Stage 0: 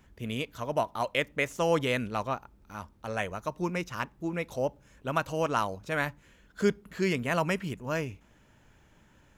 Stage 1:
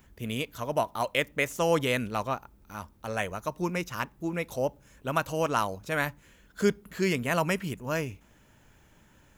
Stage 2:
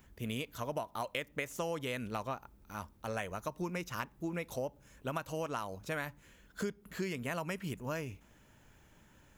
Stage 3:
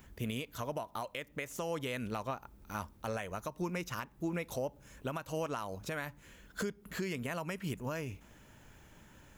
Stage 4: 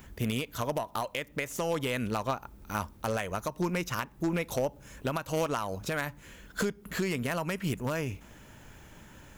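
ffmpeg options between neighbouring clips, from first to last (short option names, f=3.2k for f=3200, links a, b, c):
-af "highshelf=f=9.8k:g=11.5,volume=1dB"
-af "acompressor=threshold=-30dB:ratio=10,volume=-3dB"
-af "alimiter=level_in=6.5dB:limit=-24dB:level=0:latency=1:release=328,volume=-6.5dB,volume=4.5dB"
-af "aeval=exprs='0.0531*(cos(1*acos(clip(val(0)/0.0531,-1,1)))-cos(1*PI/2))+0.0237*(cos(2*acos(clip(val(0)/0.0531,-1,1)))-cos(2*PI/2))+0.015*(cos(4*acos(clip(val(0)/0.0531,-1,1)))-cos(4*PI/2))+0.00376*(cos(6*acos(clip(val(0)/0.0531,-1,1)))-cos(6*PI/2))':c=same,volume=6.5dB"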